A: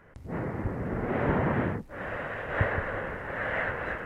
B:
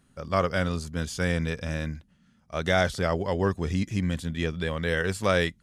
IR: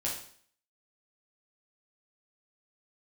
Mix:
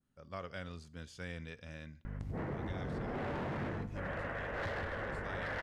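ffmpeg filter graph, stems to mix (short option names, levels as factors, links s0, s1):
-filter_complex "[0:a]aeval=exprs='val(0)+0.00891*(sin(2*PI*50*n/s)+sin(2*PI*2*50*n/s)/2+sin(2*PI*3*50*n/s)/3+sin(2*PI*4*50*n/s)/4+sin(2*PI*5*50*n/s)/5)':c=same,volume=25.1,asoftclip=hard,volume=0.0398,adelay=2050,volume=1.12,asplit=2[s0][s1];[s1]volume=0.266[s2];[1:a]adynamicequalizer=threshold=0.00794:dfrequency=2800:dqfactor=0.85:tfrequency=2800:tqfactor=0.85:attack=5:release=100:ratio=0.375:range=2.5:mode=boostabove:tftype=bell,volume=0.119,asplit=2[s3][s4];[s4]volume=0.0891[s5];[2:a]atrim=start_sample=2205[s6];[s2][s5]amix=inputs=2:normalize=0[s7];[s7][s6]afir=irnorm=-1:irlink=0[s8];[s0][s3][s8]amix=inputs=3:normalize=0,highshelf=f=8900:g=-10.5,acompressor=threshold=0.0141:ratio=6"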